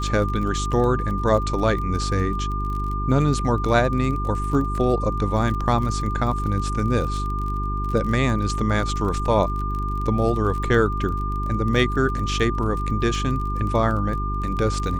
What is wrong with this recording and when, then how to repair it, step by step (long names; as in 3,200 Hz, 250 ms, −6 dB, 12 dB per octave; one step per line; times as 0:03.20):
surface crackle 29 per second −29 dBFS
mains hum 50 Hz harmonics 8 −26 dBFS
whistle 1,200 Hz −28 dBFS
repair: click removal
notch filter 1,200 Hz, Q 30
hum removal 50 Hz, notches 8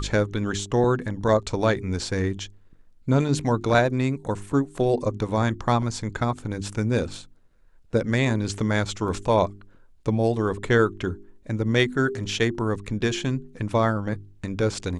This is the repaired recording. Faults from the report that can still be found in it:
none of them is left